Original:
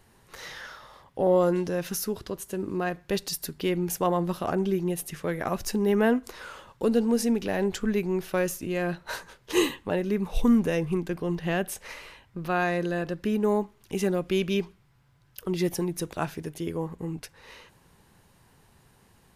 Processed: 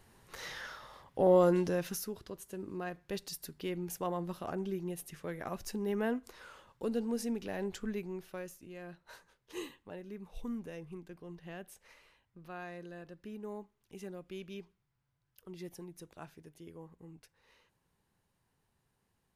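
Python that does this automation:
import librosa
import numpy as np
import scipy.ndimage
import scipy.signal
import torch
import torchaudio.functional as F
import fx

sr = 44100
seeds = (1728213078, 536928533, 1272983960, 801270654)

y = fx.gain(x, sr, db=fx.line((1.71, -3.0), (2.12, -11.0), (7.88, -11.0), (8.56, -19.0)))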